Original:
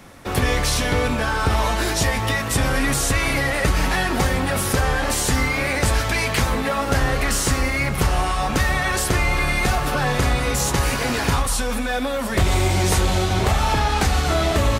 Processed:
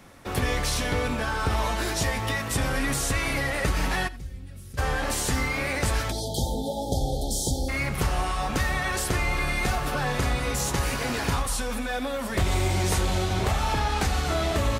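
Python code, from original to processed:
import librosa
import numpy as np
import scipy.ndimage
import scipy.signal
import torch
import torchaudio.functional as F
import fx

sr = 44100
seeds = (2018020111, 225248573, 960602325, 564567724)

y = fx.tone_stack(x, sr, knobs='10-0-1', at=(4.07, 4.77), fade=0.02)
y = fx.brickwall_bandstop(y, sr, low_hz=910.0, high_hz=3100.0, at=(6.1, 7.68), fade=0.02)
y = y + 10.0 ** (-19.5 / 20.0) * np.pad(y, (int(86 * sr / 1000.0), 0))[:len(y)]
y = F.gain(torch.from_numpy(y), -6.0).numpy()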